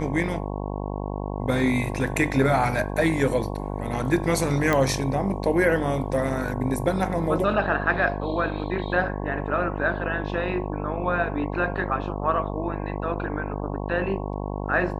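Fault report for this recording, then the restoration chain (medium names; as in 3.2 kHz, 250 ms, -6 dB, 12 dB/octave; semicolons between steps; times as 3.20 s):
buzz 50 Hz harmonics 22 -30 dBFS
4.73 s: pop -9 dBFS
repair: de-click; de-hum 50 Hz, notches 22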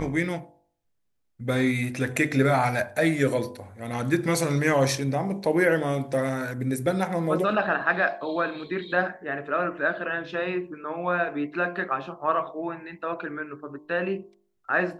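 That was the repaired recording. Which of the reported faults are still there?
nothing left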